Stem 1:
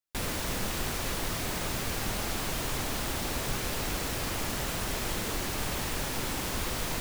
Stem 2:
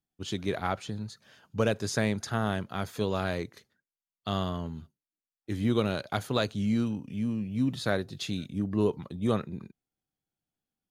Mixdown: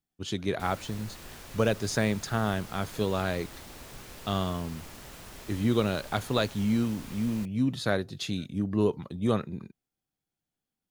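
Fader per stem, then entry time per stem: −13.5, +1.0 decibels; 0.45, 0.00 seconds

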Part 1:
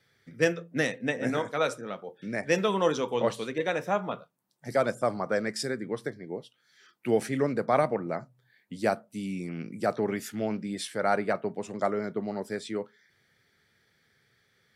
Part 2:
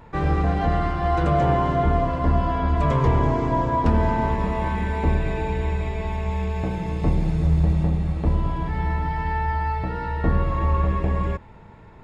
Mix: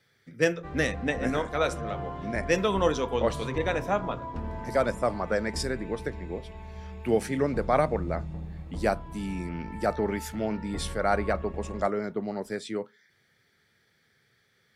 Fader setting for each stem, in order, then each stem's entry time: +0.5, −16.0 decibels; 0.00, 0.50 seconds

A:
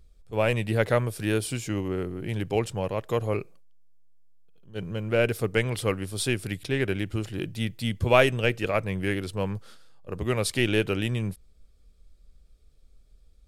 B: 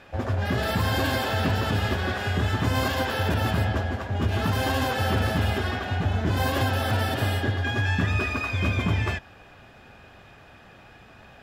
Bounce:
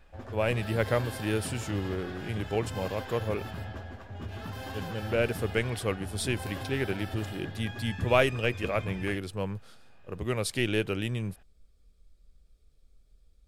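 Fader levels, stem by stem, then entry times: −4.0, −14.5 decibels; 0.00, 0.00 seconds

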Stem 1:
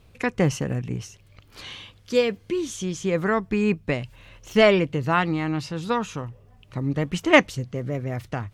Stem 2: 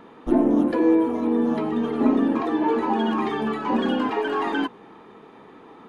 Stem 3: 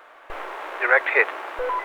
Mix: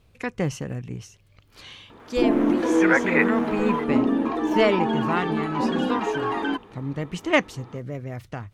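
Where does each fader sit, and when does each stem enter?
−4.5, −1.5, −3.5 decibels; 0.00, 1.90, 2.00 seconds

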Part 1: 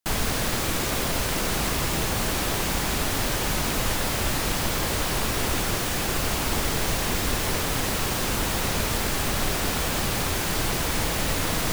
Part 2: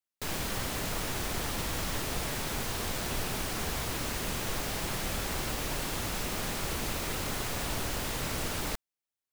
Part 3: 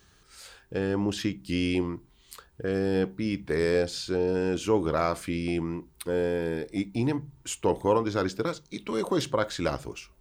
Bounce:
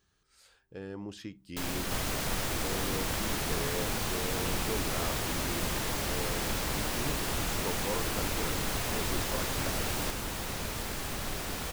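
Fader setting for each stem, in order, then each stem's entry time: −10.5, −1.0, −13.5 decibels; 1.85, 1.35, 0.00 seconds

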